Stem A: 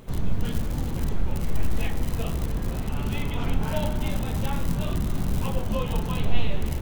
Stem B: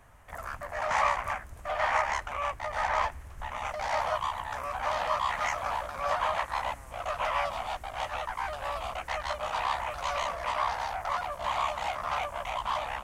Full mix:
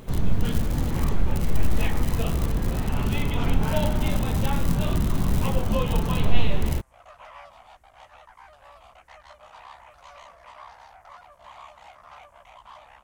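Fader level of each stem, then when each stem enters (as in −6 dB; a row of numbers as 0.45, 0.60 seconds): +3.0, −15.5 decibels; 0.00, 0.00 seconds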